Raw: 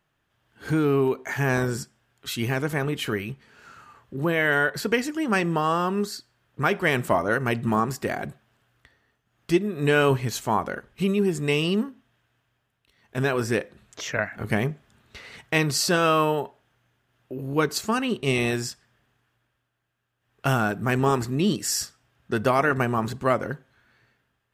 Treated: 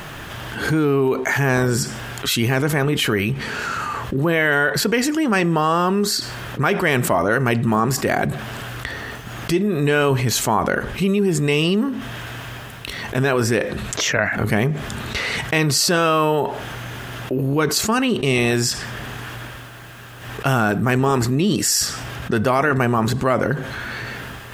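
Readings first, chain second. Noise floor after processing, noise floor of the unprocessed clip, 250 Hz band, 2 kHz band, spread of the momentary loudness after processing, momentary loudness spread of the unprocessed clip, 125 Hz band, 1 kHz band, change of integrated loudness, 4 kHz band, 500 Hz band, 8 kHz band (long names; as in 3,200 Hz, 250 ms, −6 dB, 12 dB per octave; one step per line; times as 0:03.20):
−35 dBFS, −75 dBFS, +6.0 dB, +6.0 dB, 13 LU, 14 LU, +7.0 dB, +5.0 dB, +5.0 dB, +8.5 dB, +5.0 dB, +9.5 dB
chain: envelope flattener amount 70%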